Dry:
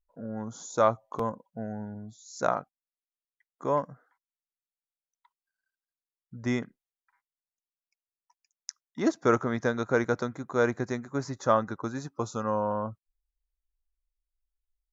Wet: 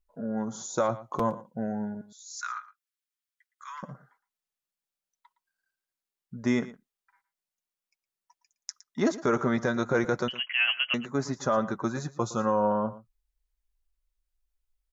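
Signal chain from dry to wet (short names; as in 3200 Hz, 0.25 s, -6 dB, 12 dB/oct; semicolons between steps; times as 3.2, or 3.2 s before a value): 10.28–10.94 inverted band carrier 3100 Hz; flange 0.45 Hz, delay 4.6 ms, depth 1.1 ms, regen -35%; limiter -23 dBFS, peak gain reduction 9.5 dB; 2.01–3.83 steep high-pass 1200 Hz 48 dB/oct; echo 0.114 s -17 dB; gain +7.5 dB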